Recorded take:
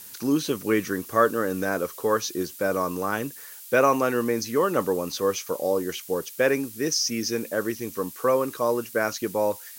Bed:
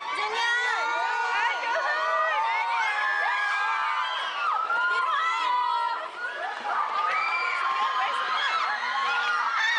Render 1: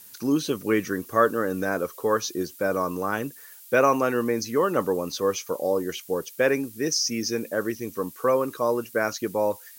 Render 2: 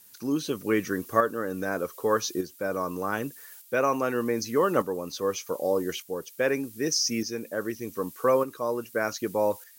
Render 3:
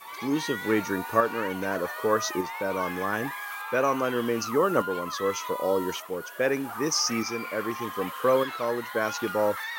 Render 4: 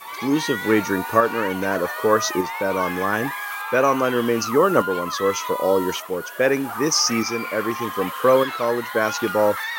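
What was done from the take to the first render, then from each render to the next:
denoiser 6 dB, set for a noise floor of -43 dBFS
tremolo saw up 0.83 Hz, depth 55%
add bed -10.5 dB
gain +6.5 dB; limiter -2 dBFS, peak gain reduction 2 dB

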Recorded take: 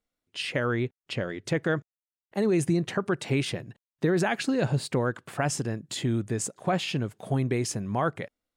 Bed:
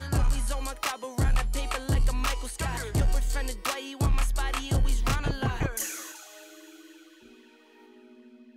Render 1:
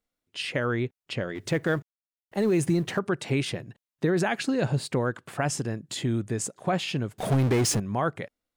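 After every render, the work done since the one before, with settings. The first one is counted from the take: 1.35–2.99 G.711 law mismatch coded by mu; 7.18–7.8 power-law curve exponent 0.5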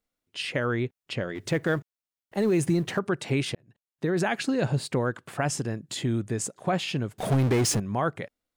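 3.55–4.26 fade in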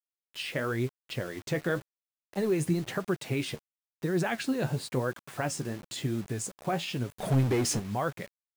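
flange 0.97 Hz, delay 4.7 ms, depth 9.2 ms, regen +53%; bit-crush 8-bit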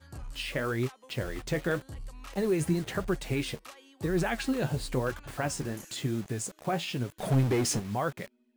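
add bed -18 dB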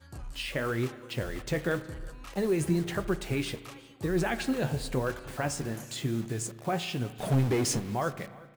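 echo 0.365 s -22.5 dB; spring tank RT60 1.5 s, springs 35 ms, chirp 25 ms, DRR 13 dB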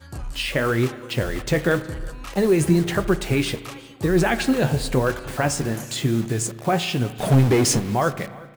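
gain +9.5 dB

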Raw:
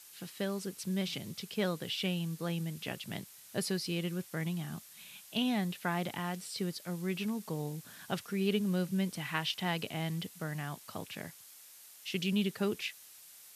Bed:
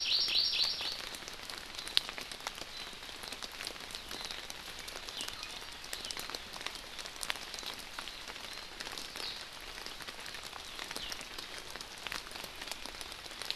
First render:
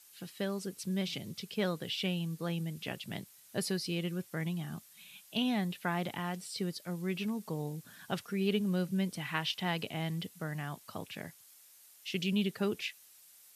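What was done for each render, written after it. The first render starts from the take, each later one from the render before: denoiser 6 dB, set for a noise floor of -55 dBFS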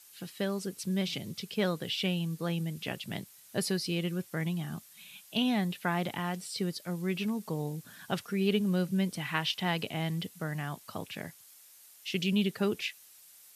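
gain +3 dB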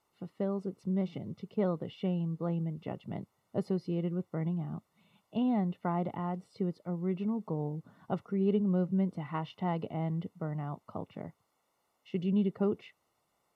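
polynomial smoothing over 65 samples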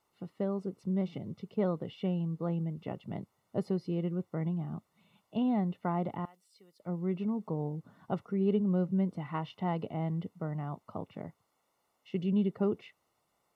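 6.25–6.8 differentiator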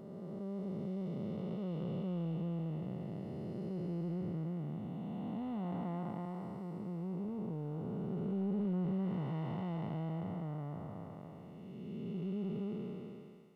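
time blur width 0.926 s; soft clip -28 dBFS, distortion -24 dB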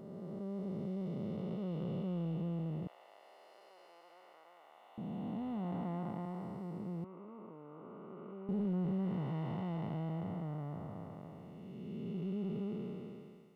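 2.87–4.98 HPF 740 Hz 24 dB/oct; 7.04–8.49 speaker cabinet 440–2500 Hz, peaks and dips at 450 Hz -5 dB, 760 Hz -9 dB, 1200 Hz +9 dB, 1700 Hz -10 dB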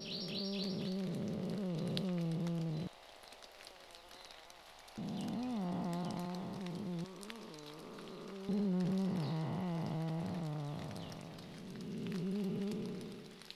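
add bed -14 dB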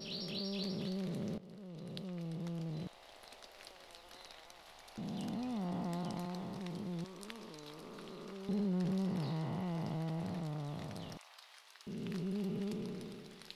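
1.38–3.22 fade in, from -16 dB; 11.17–11.87 HPF 890 Hz 24 dB/oct

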